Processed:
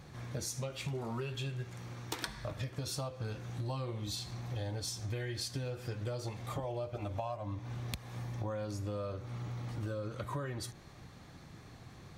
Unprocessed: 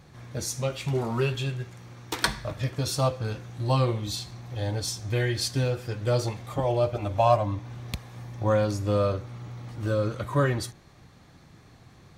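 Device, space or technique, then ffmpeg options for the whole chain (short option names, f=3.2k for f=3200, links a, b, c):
serial compression, leveller first: -af "acompressor=threshold=-26dB:ratio=2,acompressor=threshold=-36dB:ratio=6"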